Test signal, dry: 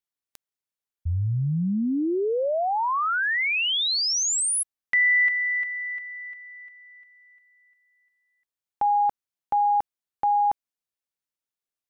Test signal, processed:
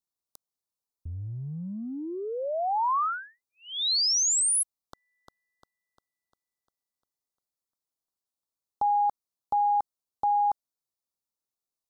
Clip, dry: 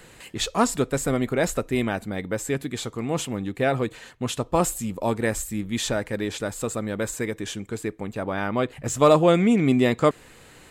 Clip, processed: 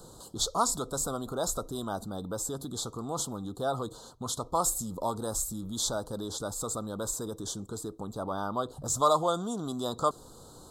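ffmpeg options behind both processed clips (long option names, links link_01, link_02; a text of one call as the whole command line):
ffmpeg -i in.wav -filter_complex "[0:a]acrossover=split=780[link_01][link_02];[link_01]acompressor=threshold=-35dB:ratio=6:attack=2:release=39:knee=6:detection=peak[link_03];[link_03][link_02]amix=inputs=2:normalize=0,asuperstop=centerf=2200:order=8:qfactor=0.91" out.wav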